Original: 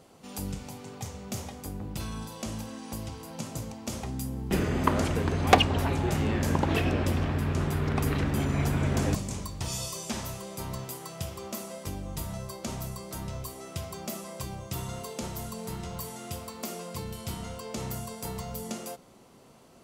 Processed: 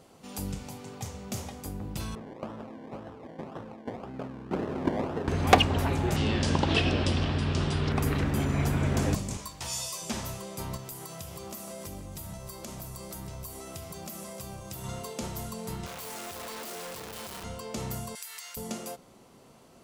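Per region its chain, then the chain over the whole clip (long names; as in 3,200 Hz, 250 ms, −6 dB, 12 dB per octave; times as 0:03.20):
0:02.15–0:05.28: spectral tilt +1.5 dB per octave + sample-and-hold swept by an LFO 27×, swing 60% 1.9 Hz + resonant band-pass 420 Hz, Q 0.5
0:06.16–0:07.92: linear-phase brick-wall low-pass 10,000 Hz + flat-topped bell 3,900 Hz +8.5 dB 1.2 octaves
0:09.37–0:10.02: low-shelf EQ 420 Hz −12 dB + double-tracking delay 14 ms −4 dB
0:10.76–0:14.84: high-shelf EQ 8,300 Hz +9 dB + downward compressor 4 to 1, threshold −38 dBFS + delay that swaps between a low-pass and a high-pass 152 ms, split 2,100 Hz, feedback 61%, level −7.5 dB
0:15.86–0:17.44: sign of each sample alone + bass and treble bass −11 dB, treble −2 dB
0:18.15–0:18.57: high-pass with resonance 1,800 Hz, resonance Q 1.8 + high-shelf EQ 3,700 Hz +9 dB + downward compressor 12 to 1, threshold −37 dBFS
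whole clip: no processing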